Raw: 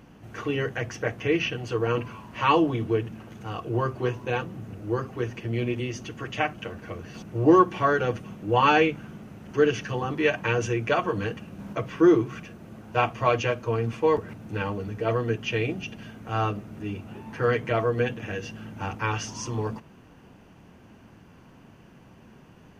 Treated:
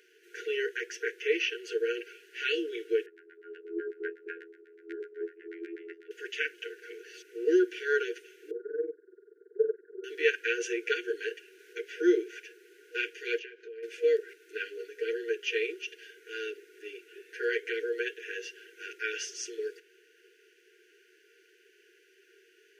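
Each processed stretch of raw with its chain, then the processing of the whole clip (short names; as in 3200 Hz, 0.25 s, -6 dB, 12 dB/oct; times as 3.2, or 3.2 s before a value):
3.06–6.11 LPF 2900 Hz + LFO low-pass saw down 8.1 Hz 240–1900 Hz + robotiser 83.9 Hz
8.51–10.04 delta modulation 32 kbps, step -33 dBFS + steep low-pass 1200 Hz 48 dB/oct + AM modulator 21 Hz, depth 85%
13.39–13.83 compressor 16:1, threshold -33 dBFS + air absorption 190 m
whole clip: steep high-pass 360 Hz 96 dB/oct; FFT band-reject 480–1400 Hz; gain -1.5 dB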